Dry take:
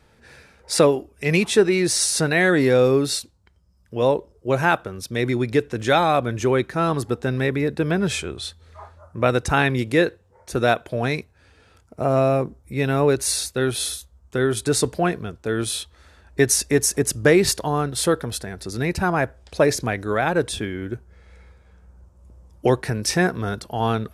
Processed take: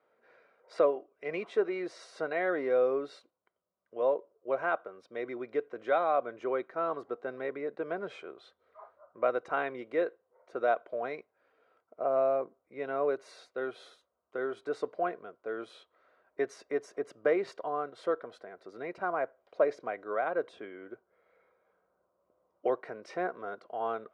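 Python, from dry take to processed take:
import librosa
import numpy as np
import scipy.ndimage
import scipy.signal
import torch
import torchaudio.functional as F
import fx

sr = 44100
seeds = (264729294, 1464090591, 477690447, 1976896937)

y = fx.ladder_bandpass(x, sr, hz=820.0, resonance_pct=20)
y = fx.notch_comb(y, sr, f0_hz=870.0)
y = y * 10.0 ** (3.5 / 20.0)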